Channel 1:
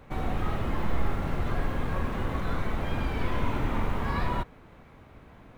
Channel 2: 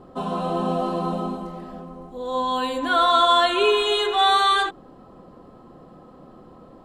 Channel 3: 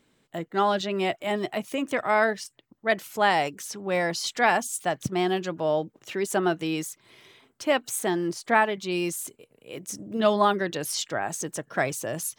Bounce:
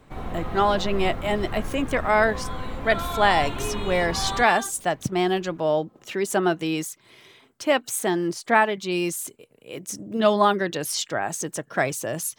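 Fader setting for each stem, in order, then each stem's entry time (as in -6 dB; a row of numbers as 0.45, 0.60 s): -3.5, -14.0, +2.5 dB; 0.00, 0.00, 0.00 s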